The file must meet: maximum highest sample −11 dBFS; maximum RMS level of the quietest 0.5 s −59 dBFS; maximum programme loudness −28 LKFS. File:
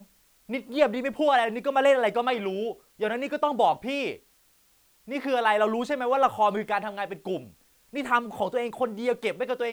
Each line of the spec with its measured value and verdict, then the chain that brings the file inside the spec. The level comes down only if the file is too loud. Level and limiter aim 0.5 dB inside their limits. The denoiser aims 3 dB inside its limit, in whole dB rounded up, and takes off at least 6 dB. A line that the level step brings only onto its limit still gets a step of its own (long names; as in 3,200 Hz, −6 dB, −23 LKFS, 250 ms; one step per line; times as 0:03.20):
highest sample −9.0 dBFS: out of spec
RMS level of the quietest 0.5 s −63 dBFS: in spec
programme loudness −26.5 LKFS: out of spec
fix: level −2 dB
brickwall limiter −11.5 dBFS